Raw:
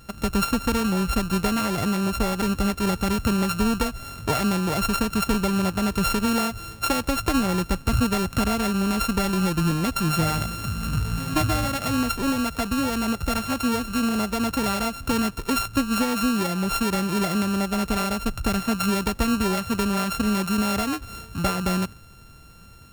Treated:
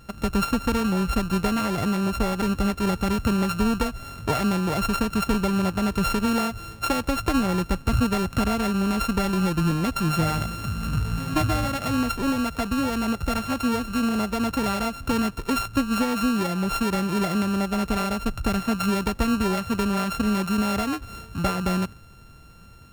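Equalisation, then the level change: high shelf 4000 Hz -5.5 dB; 0.0 dB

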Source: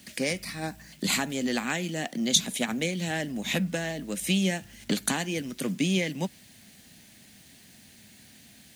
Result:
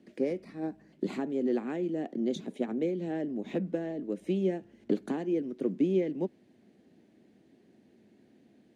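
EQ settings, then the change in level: band-pass 370 Hz, Q 3; +6.5 dB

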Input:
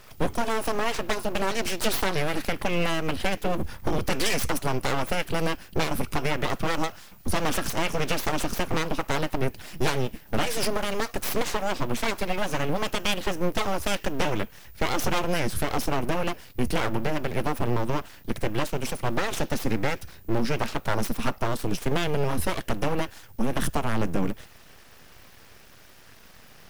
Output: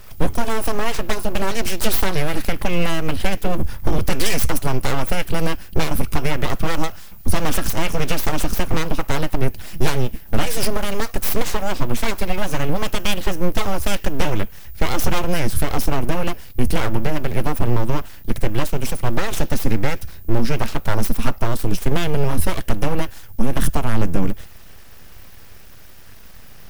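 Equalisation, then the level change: low shelf 120 Hz +11.5 dB; high shelf 11000 Hz +9 dB; +2.5 dB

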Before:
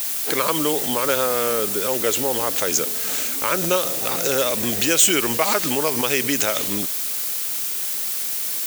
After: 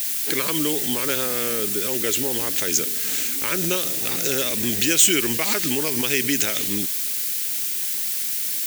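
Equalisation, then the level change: band shelf 810 Hz -9.5 dB; 0.0 dB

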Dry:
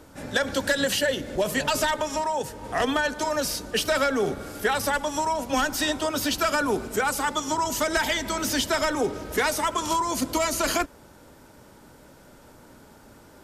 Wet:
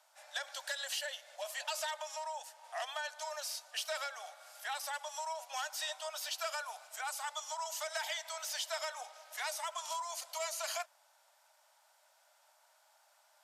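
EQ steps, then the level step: steep high-pass 630 Hz 72 dB/oct; bell 1300 Hz -7.5 dB 2.1 oct; high shelf 10000 Hz -7.5 dB; -8.0 dB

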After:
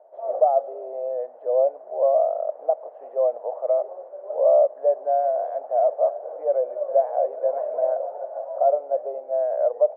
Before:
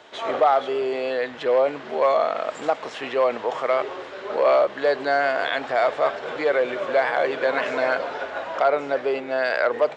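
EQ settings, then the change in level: Butterworth band-pass 620 Hz, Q 3; air absorption 230 m; +3.0 dB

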